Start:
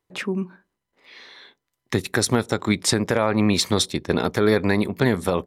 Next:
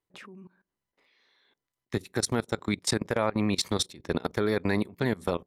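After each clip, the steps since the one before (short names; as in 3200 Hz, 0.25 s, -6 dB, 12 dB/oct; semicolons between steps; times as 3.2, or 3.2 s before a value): level quantiser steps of 21 dB; gain -4.5 dB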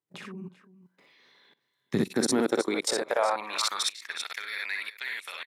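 tapped delay 48/61/363/390 ms -10.5/-4.5/-15.5/-12.5 dB; level quantiser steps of 17 dB; high-pass sweep 150 Hz -> 2200 Hz, 1.84–4.23; gain +7 dB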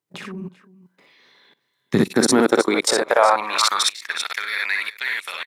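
dynamic EQ 1200 Hz, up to +4 dB, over -41 dBFS, Q 1.2; in parallel at -8.5 dB: crossover distortion -49 dBFS; on the sum: gain +6 dB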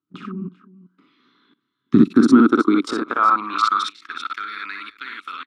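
EQ curve 150 Hz 0 dB, 290 Hz +12 dB, 560 Hz -19 dB, 870 Hz -13 dB, 1300 Hz +9 dB, 1800 Hz -13 dB, 3100 Hz -5 dB, 13000 Hz -25 dB; gain -1 dB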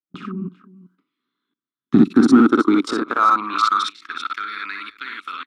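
gate with hold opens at -40 dBFS; in parallel at -9 dB: hard clip -16 dBFS, distortion -6 dB; on the sum: gain -1 dB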